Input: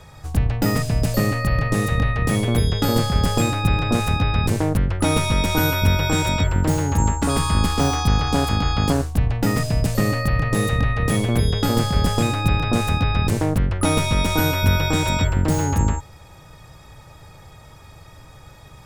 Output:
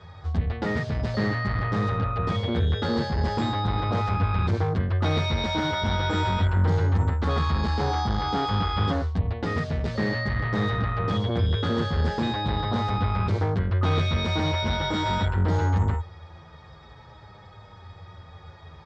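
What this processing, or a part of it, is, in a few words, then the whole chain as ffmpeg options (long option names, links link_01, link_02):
barber-pole flanger into a guitar amplifier: -filter_complex "[0:a]asplit=2[link_01][link_02];[link_02]adelay=8.4,afreqshift=-0.44[link_03];[link_01][link_03]amix=inputs=2:normalize=1,asoftclip=type=tanh:threshold=-19.5dB,highpass=78,equalizer=frequency=86:width_type=q:width=4:gain=7,equalizer=frequency=130:width_type=q:width=4:gain=-9,equalizer=frequency=280:width_type=q:width=4:gain=-7,equalizer=frequency=600:width_type=q:width=4:gain=-3,equalizer=frequency=2600:width_type=q:width=4:gain=-9,lowpass=frequency=4200:width=0.5412,lowpass=frequency=4200:width=1.3066,volume=3dB"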